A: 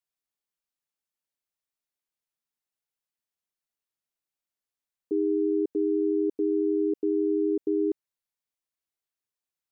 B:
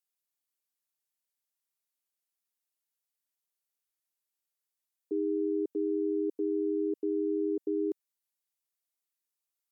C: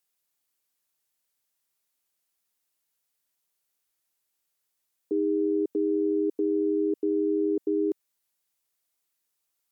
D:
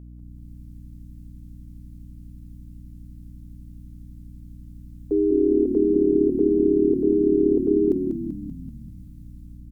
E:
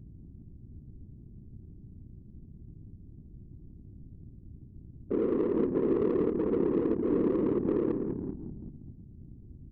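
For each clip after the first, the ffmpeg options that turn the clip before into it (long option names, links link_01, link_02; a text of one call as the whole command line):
ffmpeg -i in.wav -af "highpass=230,aemphasis=mode=production:type=cd,volume=-4dB" out.wav
ffmpeg -i in.wav -af "alimiter=level_in=4dB:limit=-24dB:level=0:latency=1:release=16,volume=-4dB,volume=8.5dB" out.wav
ffmpeg -i in.wav -filter_complex "[0:a]dynaudnorm=framelen=140:gausssize=5:maxgain=12dB,aeval=exprs='val(0)+0.02*(sin(2*PI*60*n/s)+sin(2*PI*2*60*n/s)/2+sin(2*PI*3*60*n/s)/3+sin(2*PI*4*60*n/s)/4+sin(2*PI*5*60*n/s)/5)':channel_layout=same,asplit=9[link_01][link_02][link_03][link_04][link_05][link_06][link_07][link_08][link_09];[link_02]adelay=193,afreqshift=-36,volume=-6dB[link_10];[link_03]adelay=386,afreqshift=-72,volume=-10.4dB[link_11];[link_04]adelay=579,afreqshift=-108,volume=-14.9dB[link_12];[link_05]adelay=772,afreqshift=-144,volume=-19.3dB[link_13];[link_06]adelay=965,afreqshift=-180,volume=-23.7dB[link_14];[link_07]adelay=1158,afreqshift=-216,volume=-28.2dB[link_15];[link_08]adelay=1351,afreqshift=-252,volume=-32.6dB[link_16];[link_09]adelay=1544,afreqshift=-288,volume=-37.1dB[link_17];[link_01][link_10][link_11][link_12][link_13][link_14][link_15][link_16][link_17]amix=inputs=9:normalize=0,volume=-6.5dB" out.wav
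ffmpeg -i in.wav -af "asoftclip=type=tanh:threshold=-14dB,afftfilt=real='hypot(re,im)*cos(2*PI*random(0))':imag='hypot(re,im)*sin(2*PI*random(1))':win_size=512:overlap=0.75,adynamicsmooth=sensitivity=2:basefreq=530" out.wav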